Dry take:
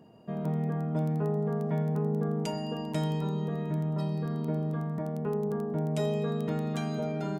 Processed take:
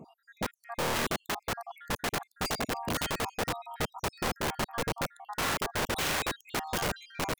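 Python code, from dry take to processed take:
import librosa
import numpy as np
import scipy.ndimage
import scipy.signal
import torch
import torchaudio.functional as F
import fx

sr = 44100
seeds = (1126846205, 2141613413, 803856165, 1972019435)

y = fx.spec_dropout(x, sr, seeds[0], share_pct=67)
y = (np.mod(10.0 ** (31.5 / 20.0) * y + 1.0, 2.0) - 1.0) / 10.0 ** (31.5 / 20.0)
y = y * librosa.db_to_amplitude(6.5)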